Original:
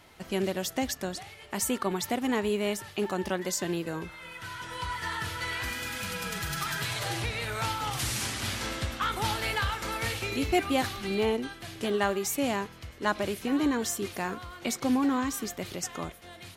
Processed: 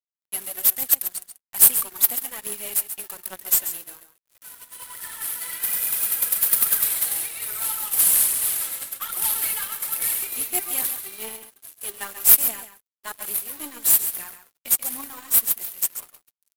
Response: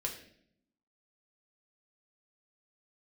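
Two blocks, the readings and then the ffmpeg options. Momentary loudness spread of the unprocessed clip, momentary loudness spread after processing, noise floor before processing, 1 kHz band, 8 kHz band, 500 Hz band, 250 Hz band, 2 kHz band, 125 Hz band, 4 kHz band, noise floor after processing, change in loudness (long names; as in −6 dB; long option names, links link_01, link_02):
8 LU, 19 LU, −49 dBFS, −7.0 dB, +14.5 dB, −13.0 dB, −17.0 dB, −4.0 dB, below −15 dB, 0.0 dB, below −85 dBFS, +10.5 dB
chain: -filter_complex "[0:a]highpass=frequency=1200:poles=1,agate=range=-33dB:threshold=-40dB:ratio=3:detection=peak,highshelf=frequency=8300:gain=8,aeval=exprs='0.251*(cos(1*acos(clip(val(0)/0.251,-1,1)))-cos(1*PI/2))+0.00447*(cos(3*acos(clip(val(0)/0.251,-1,1)))-cos(3*PI/2))+0.0251*(cos(5*acos(clip(val(0)/0.251,-1,1)))-cos(5*PI/2))+0.0141*(cos(7*acos(clip(val(0)/0.251,-1,1)))-cos(7*PI/2))+0.00282*(cos(8*acos(clip(val(0)/0.251,-1,1)))-cos(8*PI/2))':channel_layout=same,aphaser=in_gain=1:out_gain=1:delay=4.5:decay=0.54:speed=1.2:type=triangular,aexciter=amount=7.9:drive=8.3:freq=8600,aeval=exprs='sgn(val(0))*max(abs(val(0))-0.0211,0)':channel_layout=same,acrusher=bits=2:mode=log:mix=0:aa=0.000001,asplit=2[link_01][link_02];[link_02]aecho=0:1:136:0.299[link_03];[link_01][link_03]amix=inputs=2:normalize=0,volume=-5dB"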